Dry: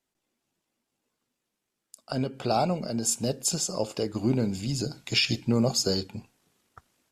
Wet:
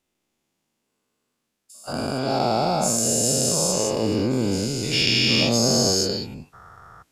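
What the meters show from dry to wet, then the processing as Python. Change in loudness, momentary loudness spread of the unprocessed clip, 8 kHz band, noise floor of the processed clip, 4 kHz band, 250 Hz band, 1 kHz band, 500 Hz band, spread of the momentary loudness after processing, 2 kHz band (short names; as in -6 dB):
+7.0 dB, 8 LU, +9.0 dB, -78 dBFS, +8.5 dB, +4.5 dB, +7.0 dB, +6.5 dB, 11 LU, +8.5 dB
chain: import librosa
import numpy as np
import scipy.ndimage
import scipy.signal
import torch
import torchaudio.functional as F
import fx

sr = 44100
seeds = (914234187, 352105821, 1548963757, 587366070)

y = fx.spec_dilate(x, sr, span_ms=480)
y = y * 10.0 ** (-3.0 / 20.0)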